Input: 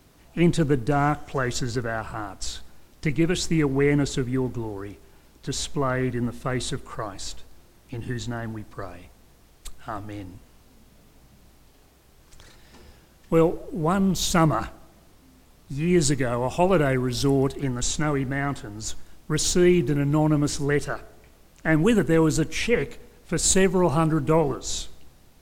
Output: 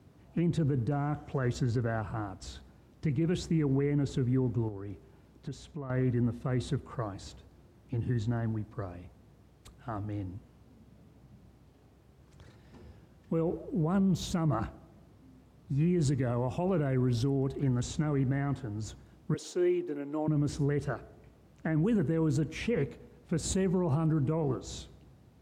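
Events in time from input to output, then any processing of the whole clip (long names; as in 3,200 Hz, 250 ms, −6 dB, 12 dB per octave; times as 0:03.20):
0:04.68–0:05.90: downward compressor 5 to 1, threshold −34 dBFS
0:19.34–0:20.28: four-pole ladder high-pass 300 Hz, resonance 25%
whole clip: high-pass filter 79 Hz 24 dB per octave; spectral tilt −3 dB per octave; brickwall limiter −14 dBFS; level −7 dB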